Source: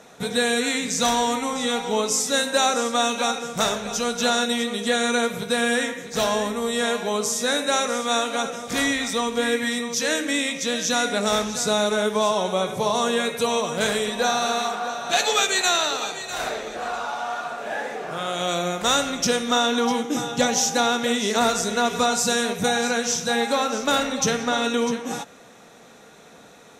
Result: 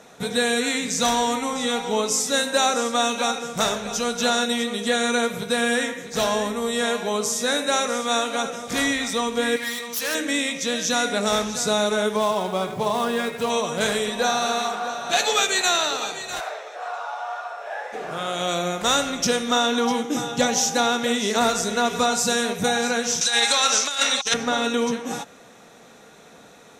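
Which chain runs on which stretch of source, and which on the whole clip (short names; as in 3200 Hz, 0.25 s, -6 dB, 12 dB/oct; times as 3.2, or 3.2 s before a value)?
9.56–10.15 self-modulated delay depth 0.12 ms + low shelf 480 Hz -9 dB + notches 60/120/180/240 Hz
12.16–13.5 median filter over 9 samples + notch 520 Hz, Q 6.6
16.39–17.92 HPF 570 Hz 24 dB/oct + high shelf 2300 Hz -10.5 dB + whine 5400 Hz -61 dBFS
23.21–24.34 weighting filter ITU-R 468 + negative-ratio compressor -20 dBFS, ratio -0.5
whole clip: dry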